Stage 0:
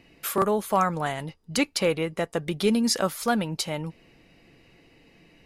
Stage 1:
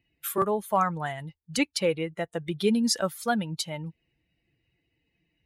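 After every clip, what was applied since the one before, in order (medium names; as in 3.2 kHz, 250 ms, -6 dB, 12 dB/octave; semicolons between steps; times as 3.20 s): expander on every frequency bin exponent 1.5; high-pass 53 Hz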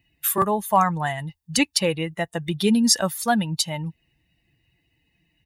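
treble shelf 5.5 kHz +5.5 dB; comb 1.1 ms, depth 41%; trim +5 dB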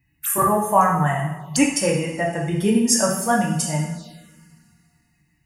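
two-slope reverb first 0.65 s, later 2.5 s, from -17 dB, DRR -3 dB; touch-sensitive phaser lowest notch 550 Hz, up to 4 kHz, full sweep at -22 dBFS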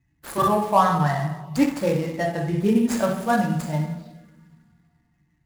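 median filter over 15 samples; trim -1 dB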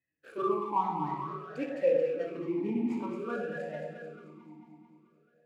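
echo whose repeats swap between lows and highs 110 ms, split 890 Hz, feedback 80%, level -5 dB; talking filter e-u 0.53 Hz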